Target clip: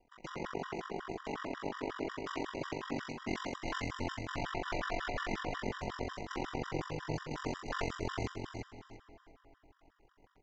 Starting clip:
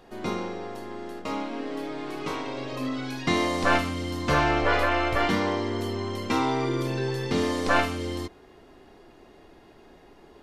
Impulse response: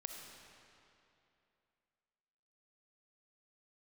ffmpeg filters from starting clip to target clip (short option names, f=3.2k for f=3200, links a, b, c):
-filter_complex "[0:a]equalizer=f=3.8k:t=o:w=0.32:g=-13,areverse,acompressor=threshold=-34dB:ratio=20,areverse,aeval=exprs='0.0531*(cos(1*acos(clip(val(0)/0.0531,-1,1)))-cos(1*PI/2))+0.00422*(cos(6*acos(clip(val(0)/0.0531,-1,1)))-cos(6*PI/2))+0.00841*(cos(7*acos(clip(val(0)/0.0531,-1,1)))-cos(7*PI/2))':c=same,aeval=exprs='val(0)*sin(2*PI*23*n/s)':c=same,aecho=1:1:345|690|1035:0.562|0.141|0.0351,asplit=2[a][b];[1:a]atrim=start_sample=2205,asetrate=33075,aresample=44100[c];[b][c]afir=irnorm=-1:irlink=0,volume=-4dB[d];[a][d]amix=inputs=2:normalize=0,aresample=16000,aresample=44100,afftfilt=real='re*gt(sin(2*PI*5.5*pts/sr)*(1-2*mod(floor(b*sr/1024/970),2)),0)':imag='im*gt(sin(2*PI*5.5*pts/sr)*(1-2*mod(floor(b*sr/1024/970),2)),0)':win_size=1024:overlap=0.75,volume=2dB"